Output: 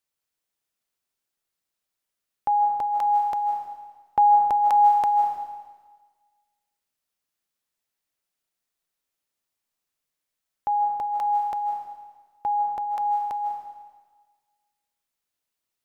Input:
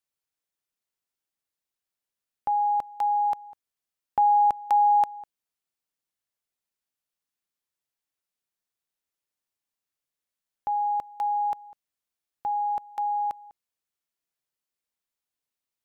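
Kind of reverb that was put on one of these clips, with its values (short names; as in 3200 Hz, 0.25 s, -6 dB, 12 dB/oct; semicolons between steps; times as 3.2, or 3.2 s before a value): digital reverb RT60 1.4 s, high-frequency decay 1×, pre-delay 0.115 s, DRR 4 dB; gain +3 dB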